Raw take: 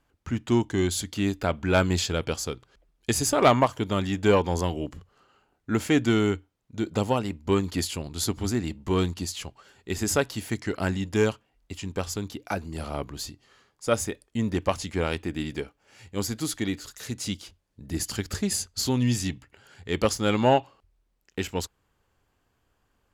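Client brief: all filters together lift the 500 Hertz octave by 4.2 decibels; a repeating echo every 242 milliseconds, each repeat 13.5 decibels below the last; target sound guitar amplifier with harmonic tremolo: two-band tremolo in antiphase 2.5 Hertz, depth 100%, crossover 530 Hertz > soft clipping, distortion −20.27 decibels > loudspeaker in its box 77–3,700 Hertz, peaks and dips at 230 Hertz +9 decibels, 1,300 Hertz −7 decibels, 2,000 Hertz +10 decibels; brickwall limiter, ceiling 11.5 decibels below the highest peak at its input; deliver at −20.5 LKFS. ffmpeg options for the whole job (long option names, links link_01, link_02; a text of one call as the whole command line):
ffmpeg -i in.wav -filter_complex "[0:a]equalizer=frequency=500:width_type=o:gain=5,alimiter=limit=-16.5dB:level=0:latency=1,aecho=1:1:242|484:0.211|0.0444,acrossover=split=530[link_01][link_02];[link_01]aeval=exprs='val(0)*(1-1/2+1/2*cos(2*PI*2.5*n/s))':channel_layout=same[link_03];[link_02]aeval=exprs='val(0)*(1-1/2-1/2*cos(2*PI*2.5*n/s))':channel_layout=same[link_04];[link_03][link_04]amix=inputs=2:normalize=0,asoftclip=threshold=-20.5dB,highpass=77,equalizer=frequency=230:width_type=q:width=4:gain=9,equalizer=frequency=1300:width_type=q:width=4:gain=-7,equalizer=frequency=2000:width_type=q:width=4:gain=10,lowpass=frequency=3700:width=0.5412,lowpass=frequency=3700:width=1.3066,volume=12dB" out.wav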